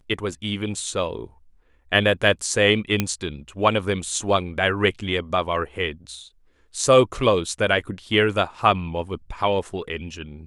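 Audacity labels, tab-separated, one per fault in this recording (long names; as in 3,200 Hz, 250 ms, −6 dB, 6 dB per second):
3.000000	3.000000	click −6 dBFS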